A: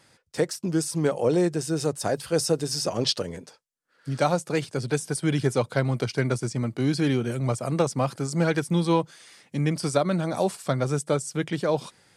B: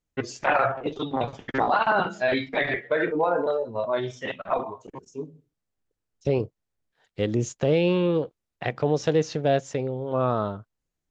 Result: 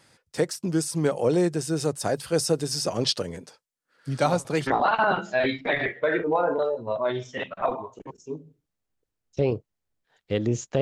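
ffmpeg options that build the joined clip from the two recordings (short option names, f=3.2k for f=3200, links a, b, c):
-filter_complex "[1:a]asplit=2[a][b];[0:a]apad=whole_dur=10.81,atrim=end=10.81,atrim=end=4.672[c];[b]atrim=start=1.548:end=7.69[d];[a]atrim=start=1.07:end=1.55,asetpts=PTS-STARTPTS,volume=-7.5dB,afade=t=in:d=0.004:c=hsin,afade=t=out:st=0.476:d=0.004:c=hsin,adelay=4190[e];[c][d]acrossfade=d=0.004:c1=hsin:c2=hsin[f];[f][e]amix=inputs=2:normalize=0"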